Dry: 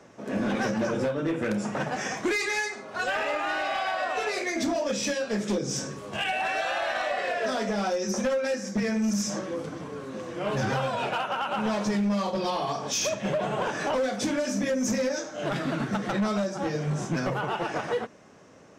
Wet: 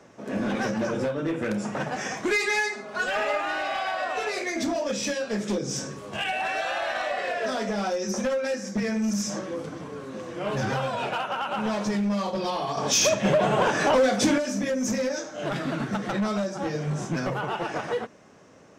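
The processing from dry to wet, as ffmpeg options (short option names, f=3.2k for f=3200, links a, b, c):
-filter_complex "[0:a]asettb=1/sr,asplit=3[a][b][c];[a]atrim=end=2.294[d];[b]atrim=start=2.29:end=3.41,asetpts=PTS-STARTPTS,afade=t=in:d=0.004:c=qsin,afade=t=out:st=1.116:d=0.004:c=qsin,aecho=1:1:4.8:0.63,atrim=end_sample=49392[e];[c]atrim=start=3.406[f];[d][e]acrossfade=d=0.004:c1=hsin:c2=qsin[g];[g][f]acrossfade=d=0.004:c1=qsin:c2=hsin,asettb=1/sr,asplit=3[h][i][j];[h]atrim=end=12.774[k];[i]atrim=start=12.77:end=14.38,asetpts=PTS-STARTPTS,afade=t=in:d=0.004:c=qsin,afade=t=out:st=1.606:d=0.004:c=qsin,acontrast=66[l];[j]atrim=start=14.376[m];[k][l]acrossfade=d=0.004:c1=hsin:c2=qsin[n];[n][m]acrossfade=d=0.004:c1=qsin:c2=hsin"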